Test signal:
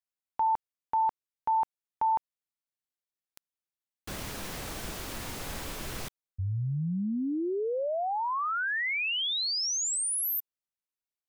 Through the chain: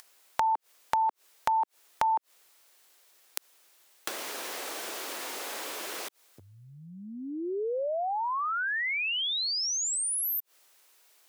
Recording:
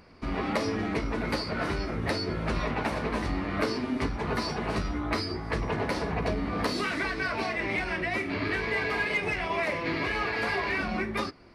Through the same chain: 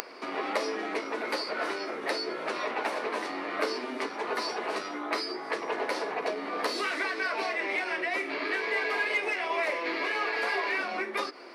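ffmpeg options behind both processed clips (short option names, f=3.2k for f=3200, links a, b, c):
-filter_complex "[0:a]highpass=f=350:w=0.5412,highpass=f=350:w=1.3066,asplit=2[a][b];[b]acompressor=mode=upward:threshold=-36dB:ratio=2.5:attack=93:release=51:knee=2.83:detection=peak,volume=0dB[c];[a][c]amix=inputs=2:normalize=0,volume=-6dB"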